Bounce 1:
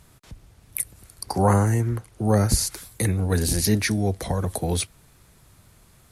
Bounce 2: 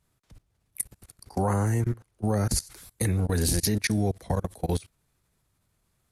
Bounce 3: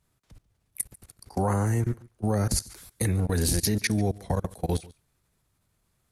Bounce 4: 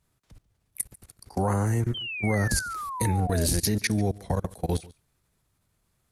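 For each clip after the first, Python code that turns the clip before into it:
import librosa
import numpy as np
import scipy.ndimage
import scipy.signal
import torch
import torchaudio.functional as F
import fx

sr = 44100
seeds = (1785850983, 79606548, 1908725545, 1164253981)

y1 = fx.level_steps(x, sr, step_db=24)
y2 = y1 + 10.0 ** (-22.5 / 20.0) * np.pad(y1, (int(143 * sr / 1000.0), 0))[:len(y1)]
y3 = fx.spec_paint(y2, sr, seeds[0], shape='fall', start_s=1.94, length_s=1.53, low_hz=580.0, high_hz=3200.0, level_db=-34.0)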